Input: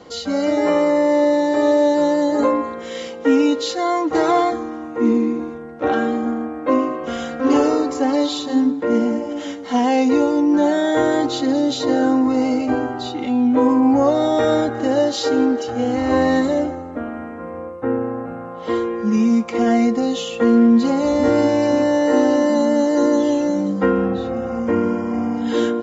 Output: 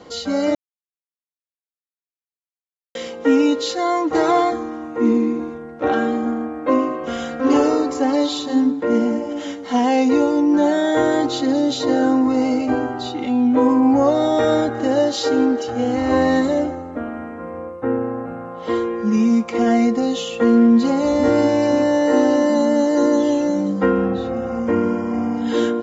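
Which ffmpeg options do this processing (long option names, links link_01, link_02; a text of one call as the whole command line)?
ffmpeg -i in.wav -filter_complex "[0:a]asplit=3[link_01][link_02][link_03];[link_01]atrim=end=0.55,asetpts=PTS-STARTPTS,afade=type=out:start_time=0.546:duration=0.004:curve=hsin[link_04];[link_02]atrim=start=0.55:end=2.95,asetpts=PTS-STARTPTS,volume=0[link_05];[link_03]atrim=start=2.95,asetpts=PTS-STARTPTS,afade=type=in:duration=0.004:curve=hsin[link_06];[link_04][link_05][link_06]concat=n=3:v=0:a=1" out.wav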